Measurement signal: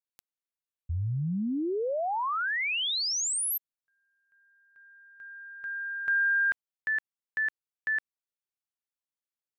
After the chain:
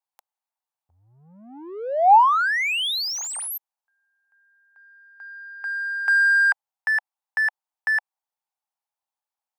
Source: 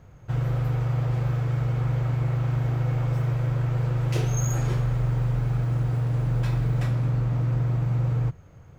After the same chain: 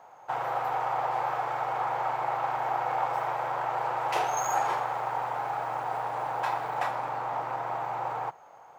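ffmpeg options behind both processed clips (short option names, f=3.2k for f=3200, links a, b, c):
-filter_complex "[0:a]asplit=2[a][b];[b]adynamicsmooth=sensitivity=7.5:basefreq=1.3k,volume=0dB[c];[a][c]amix=inputs=2:normalize=0,asoftclip=type=tanh:threshold=-9.5dB,highpass=f=830:t=q:w=4.9"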